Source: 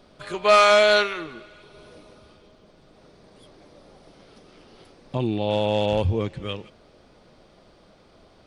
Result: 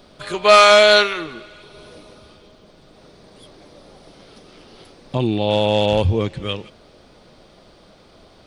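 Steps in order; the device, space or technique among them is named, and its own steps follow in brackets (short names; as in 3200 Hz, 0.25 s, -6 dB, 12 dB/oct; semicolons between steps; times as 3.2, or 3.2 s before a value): presence and air boost (bell 3800 Hz +3 dB 0.77 oct; high shelf 9300 Hz +6 dB); gain +5 dB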